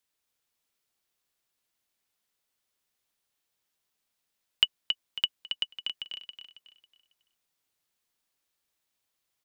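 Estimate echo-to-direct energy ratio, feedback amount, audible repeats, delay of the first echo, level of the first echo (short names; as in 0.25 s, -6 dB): -6.0 dB, 34%, 4, 0.274 s, -6.5 dB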